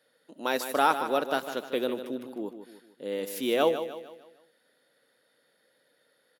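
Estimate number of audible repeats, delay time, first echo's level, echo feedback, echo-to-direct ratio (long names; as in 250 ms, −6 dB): 4, 152 ms, −10.0 dB, 43%, −9.0 dB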